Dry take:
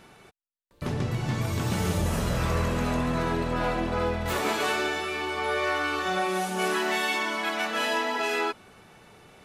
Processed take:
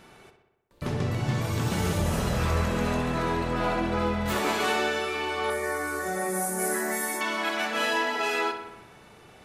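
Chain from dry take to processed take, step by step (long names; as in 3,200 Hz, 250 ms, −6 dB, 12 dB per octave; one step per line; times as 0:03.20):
0:05.50–0:07.21: drawn EQ curve 490 Hz 0 dB, 1,200 Hz −8 dB, 2,000 Hz 0 dB, 2,800 Hz −23 dB, 9,300 Hz +12 dB
feedback echo with a low-pass in the loop 63 ms, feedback 65%, low-pass 4,400 Hz, level −8 dB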